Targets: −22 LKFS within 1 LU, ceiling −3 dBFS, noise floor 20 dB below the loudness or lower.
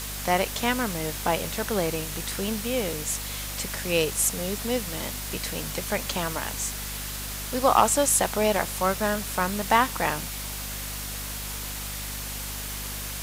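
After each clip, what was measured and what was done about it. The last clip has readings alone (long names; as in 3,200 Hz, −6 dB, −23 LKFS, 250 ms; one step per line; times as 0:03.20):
mains hum 50 Hz; hum harmonics up to 250 Hz; level of the hum −36 dBFS; background noise floor −34 dBFS; target noise floor −47 dBFS; integrated loudness −26.5 LKFS; sample peak −6.5 dBFS; target loudness −22.0 LKFS
→ mains-hum notches 50/100/150/200/250 Hz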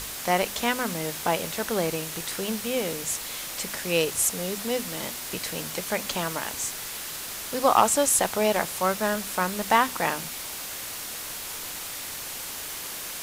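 mains hum none found; background noise floor −36 dBFS; target noise floor −47 dBFS
→ noise reduction from a noise print 11 dB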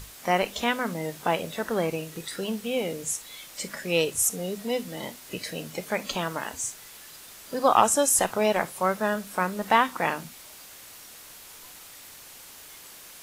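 background noise floor −47 dBFS; integrated loudness −26.5 LKFS; sample peak −6.5 dBFS; target loudness −22.0 LKFS
→ level +4.5 dB
brickwall limiter −3 dBFS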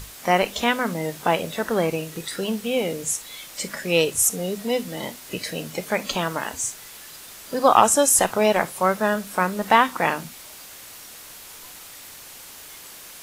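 integrated loudness −22.0 LKFS; sample peak −3.0 dBFS; background noise floor −42 dBFS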